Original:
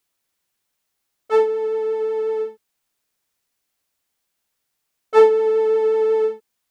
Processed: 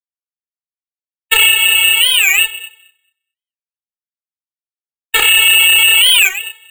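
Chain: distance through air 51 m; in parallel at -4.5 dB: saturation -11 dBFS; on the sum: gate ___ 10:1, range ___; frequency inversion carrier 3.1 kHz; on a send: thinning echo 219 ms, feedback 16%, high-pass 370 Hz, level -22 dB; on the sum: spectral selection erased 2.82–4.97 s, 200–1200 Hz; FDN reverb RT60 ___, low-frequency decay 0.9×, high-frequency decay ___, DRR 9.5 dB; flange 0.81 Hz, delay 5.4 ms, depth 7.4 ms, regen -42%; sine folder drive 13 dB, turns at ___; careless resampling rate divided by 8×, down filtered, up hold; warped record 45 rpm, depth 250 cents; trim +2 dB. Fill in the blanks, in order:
-22 dBFS, -52 dB, 0.72 s, 0.85×, -4.5 dBFS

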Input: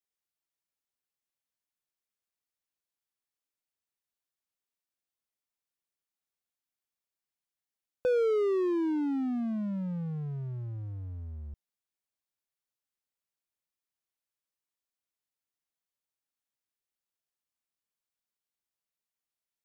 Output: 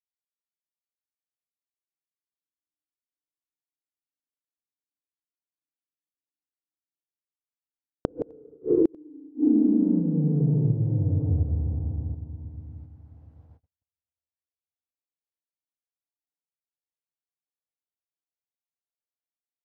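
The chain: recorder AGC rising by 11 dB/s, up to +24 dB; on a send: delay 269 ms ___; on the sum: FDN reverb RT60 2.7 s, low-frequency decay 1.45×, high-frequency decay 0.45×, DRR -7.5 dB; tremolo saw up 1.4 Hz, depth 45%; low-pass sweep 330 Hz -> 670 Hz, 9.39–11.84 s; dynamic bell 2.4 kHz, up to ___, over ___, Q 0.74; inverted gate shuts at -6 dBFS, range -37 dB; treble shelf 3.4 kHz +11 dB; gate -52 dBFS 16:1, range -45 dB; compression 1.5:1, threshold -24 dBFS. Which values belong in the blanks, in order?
-9.5 dB, +5 dB, -38 dBFS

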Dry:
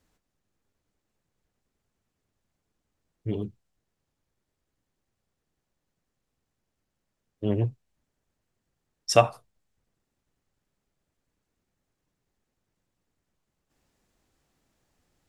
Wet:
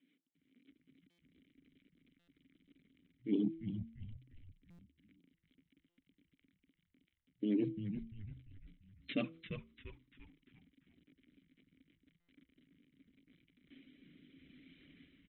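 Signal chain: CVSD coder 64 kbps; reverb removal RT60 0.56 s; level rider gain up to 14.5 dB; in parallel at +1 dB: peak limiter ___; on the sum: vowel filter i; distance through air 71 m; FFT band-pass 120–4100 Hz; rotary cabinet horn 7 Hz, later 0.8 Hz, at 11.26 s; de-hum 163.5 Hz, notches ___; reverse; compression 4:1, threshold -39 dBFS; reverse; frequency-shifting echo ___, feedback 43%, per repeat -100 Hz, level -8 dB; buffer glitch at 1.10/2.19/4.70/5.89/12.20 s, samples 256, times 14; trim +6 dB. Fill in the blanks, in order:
-11 dBFS, 3, 344 ms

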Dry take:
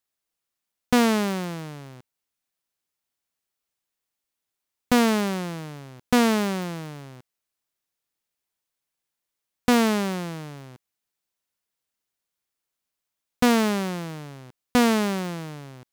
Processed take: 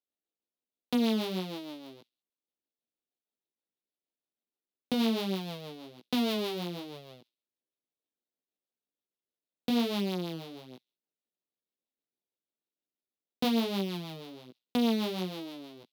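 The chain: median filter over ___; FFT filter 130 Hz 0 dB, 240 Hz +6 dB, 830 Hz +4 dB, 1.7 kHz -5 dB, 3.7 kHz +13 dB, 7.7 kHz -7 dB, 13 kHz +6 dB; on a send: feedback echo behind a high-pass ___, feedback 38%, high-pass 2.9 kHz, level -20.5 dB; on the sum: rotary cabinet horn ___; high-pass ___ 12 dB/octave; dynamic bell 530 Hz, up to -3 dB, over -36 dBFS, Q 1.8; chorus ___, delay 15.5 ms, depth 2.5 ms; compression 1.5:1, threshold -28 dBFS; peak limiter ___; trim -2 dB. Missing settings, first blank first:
41 samples, 66 ms, 6.3 Hz, 200 Hz, 1.3 Hz, -16.5 dBFS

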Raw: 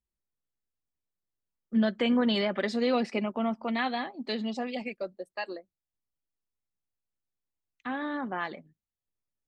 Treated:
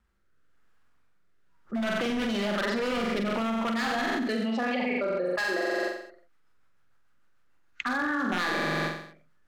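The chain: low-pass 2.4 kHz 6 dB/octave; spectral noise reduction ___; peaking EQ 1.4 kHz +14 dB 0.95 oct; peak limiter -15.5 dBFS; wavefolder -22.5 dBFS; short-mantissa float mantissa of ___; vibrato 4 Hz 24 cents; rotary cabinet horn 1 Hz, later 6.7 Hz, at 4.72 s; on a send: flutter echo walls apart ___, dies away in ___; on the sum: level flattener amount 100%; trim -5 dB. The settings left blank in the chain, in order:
16 dB, 8-bit, 7.6 m, 0.67 s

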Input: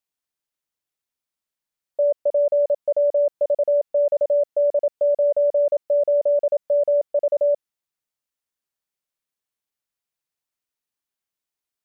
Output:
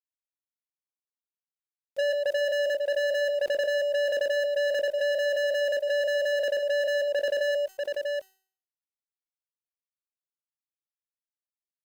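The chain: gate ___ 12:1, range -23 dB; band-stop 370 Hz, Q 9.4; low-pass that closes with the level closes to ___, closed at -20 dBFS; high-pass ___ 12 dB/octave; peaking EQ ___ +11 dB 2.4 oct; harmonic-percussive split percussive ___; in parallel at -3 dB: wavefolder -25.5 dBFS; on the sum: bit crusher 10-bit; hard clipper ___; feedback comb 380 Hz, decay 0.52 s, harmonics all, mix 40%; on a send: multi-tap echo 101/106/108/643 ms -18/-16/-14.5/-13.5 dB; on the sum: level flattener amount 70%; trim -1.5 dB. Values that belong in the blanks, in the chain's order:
-30 dBFS, 500 Hz, 270 Hz, 400 Hz, -15 dB, -19 dBFS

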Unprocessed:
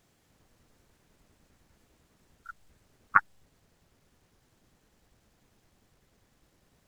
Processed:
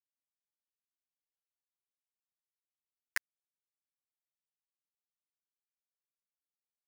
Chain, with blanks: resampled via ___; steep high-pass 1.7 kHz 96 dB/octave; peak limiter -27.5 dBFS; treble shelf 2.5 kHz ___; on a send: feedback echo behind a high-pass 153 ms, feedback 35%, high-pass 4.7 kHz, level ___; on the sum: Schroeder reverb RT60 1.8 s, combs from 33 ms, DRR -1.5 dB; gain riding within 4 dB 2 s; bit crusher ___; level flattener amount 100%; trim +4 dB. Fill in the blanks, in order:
16 kHz, +7 dB, -11 dB, 5-bit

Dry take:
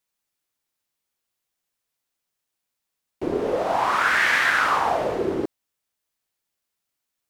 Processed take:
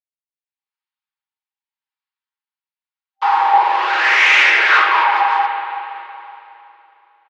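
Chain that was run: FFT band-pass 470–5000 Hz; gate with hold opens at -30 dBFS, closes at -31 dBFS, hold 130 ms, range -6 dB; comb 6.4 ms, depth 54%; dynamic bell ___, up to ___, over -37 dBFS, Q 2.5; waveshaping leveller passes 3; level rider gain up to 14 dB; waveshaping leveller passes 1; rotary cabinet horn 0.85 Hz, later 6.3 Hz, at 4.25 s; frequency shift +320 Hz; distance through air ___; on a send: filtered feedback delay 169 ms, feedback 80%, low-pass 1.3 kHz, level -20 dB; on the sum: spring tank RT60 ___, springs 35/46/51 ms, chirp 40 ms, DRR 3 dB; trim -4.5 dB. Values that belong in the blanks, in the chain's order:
2.4 kHz, +6 dB, 190 m, 2.9 s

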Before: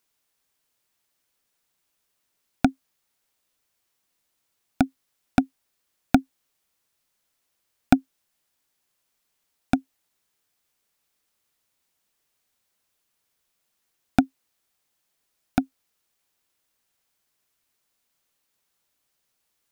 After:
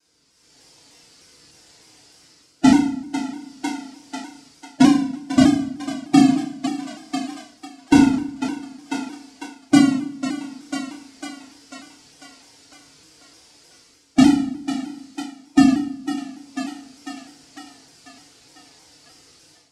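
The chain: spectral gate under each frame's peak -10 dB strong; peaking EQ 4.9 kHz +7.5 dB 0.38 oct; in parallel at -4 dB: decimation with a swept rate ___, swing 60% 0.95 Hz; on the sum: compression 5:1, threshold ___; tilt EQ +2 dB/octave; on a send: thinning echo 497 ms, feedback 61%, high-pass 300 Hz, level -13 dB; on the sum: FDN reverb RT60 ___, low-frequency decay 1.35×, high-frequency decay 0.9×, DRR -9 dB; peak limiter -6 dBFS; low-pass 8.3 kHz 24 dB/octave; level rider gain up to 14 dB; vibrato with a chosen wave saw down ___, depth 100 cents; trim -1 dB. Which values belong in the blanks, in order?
40×, -17 dBFS, 0.64 s, 3.3 Hz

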